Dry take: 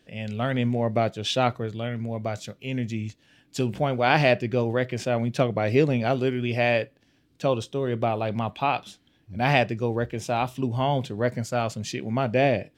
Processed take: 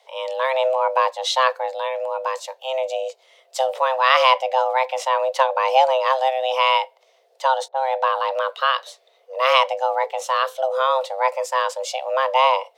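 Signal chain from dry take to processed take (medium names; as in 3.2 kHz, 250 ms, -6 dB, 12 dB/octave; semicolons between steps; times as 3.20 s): frequency shift +390 Hz; 7.68–8.18 s: level-controlled noise filter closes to 710 Hz, open at -21.5 dBFS; trim +4.5 dB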